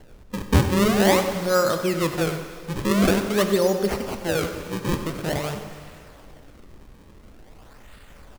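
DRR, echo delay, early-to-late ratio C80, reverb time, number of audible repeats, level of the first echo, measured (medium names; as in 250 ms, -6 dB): 6.0 dB, 95 ms, 7.5 dB, 2.3 s, 1, -13.0 dB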